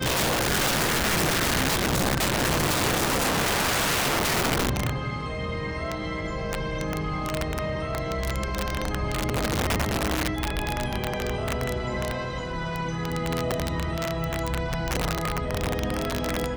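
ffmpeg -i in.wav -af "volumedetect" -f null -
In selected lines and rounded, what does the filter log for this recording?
mean_volume: -26.3 dB
max_volume: -17.3 dB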